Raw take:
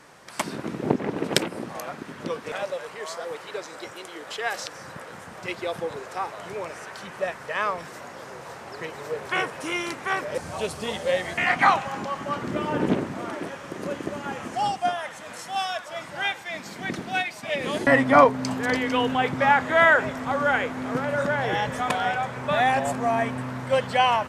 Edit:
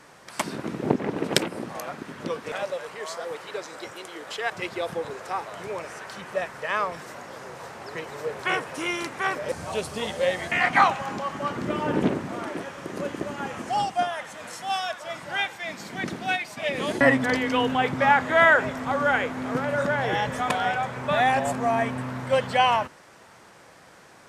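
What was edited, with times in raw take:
0:04.50–0:05.36: remove
0:18.10–0:18.64: remove

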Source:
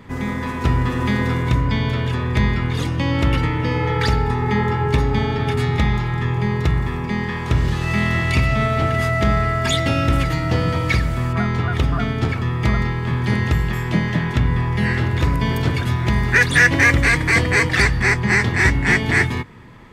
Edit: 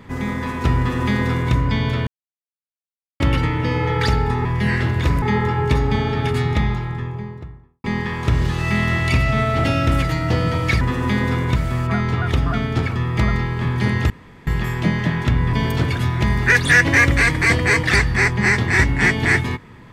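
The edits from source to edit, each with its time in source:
0:00.79–0:01.54: duplicate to 0:11.02
0:02.07–0:03.20: silence
0:05.53–0:07.07: fade out and dull
0:08.87–0:09.85: remove
0:13.56: splice in room tone 0.37 s
0:14.62–0:15.39: move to 0:04.45

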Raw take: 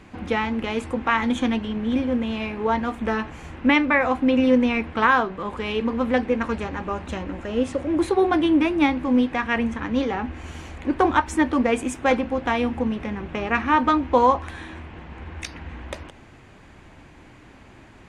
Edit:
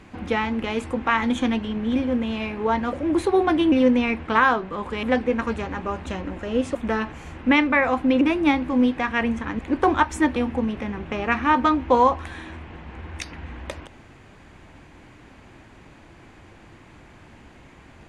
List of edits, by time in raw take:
0:02.93–0:04.39: swap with 0:07.77–0:08.56
0:05.70–0:06.05: remove
0:09.94–0:10.76: remove
0:11.53–0:12.59: remove

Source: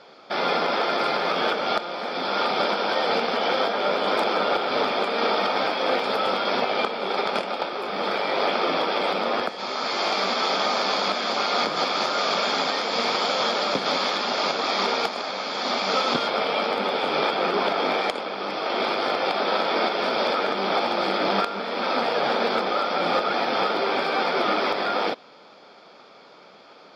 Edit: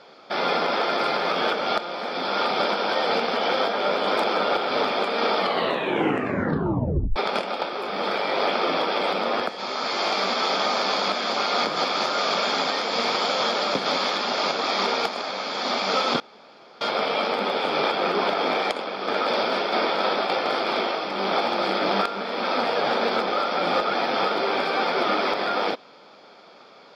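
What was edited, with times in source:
0:05.37: tape stop 1.79 s
0:16.20: splice in room tone 0.61 s
0:18.46–0:20.54: reverse

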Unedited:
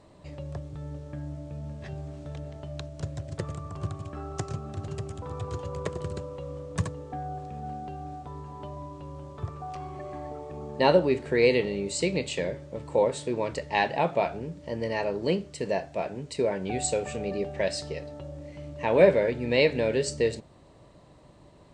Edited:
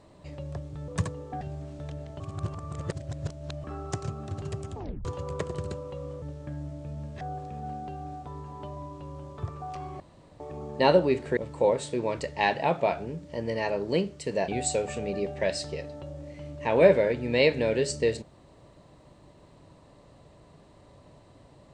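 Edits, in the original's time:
0:00.88–0:01.87: swap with 0:06.68–0:07.21
0:02.66–0:04.10: reverse
0:05.20: tape stop 0.31 s
0:10.00–0:10.40: fill with room tone
0:11.37–0:12.71: remove
0:15.82–0:16.66: remove

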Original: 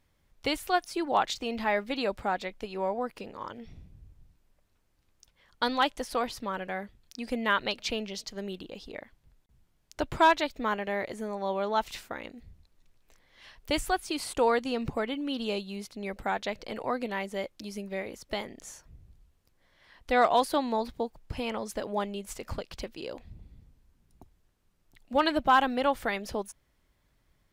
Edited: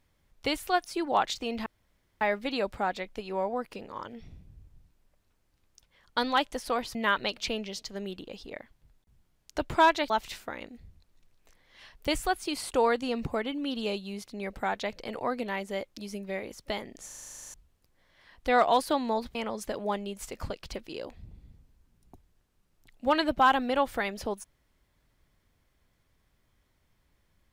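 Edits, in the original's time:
0:01.66: splice in room tone 0.55 s
0:06.40–0:07.37: remove
0:10.52–0:11.73: remove
0:18.69: stutter in place 0.04 s, 12 plays
0:20.98–0:21.43: remove

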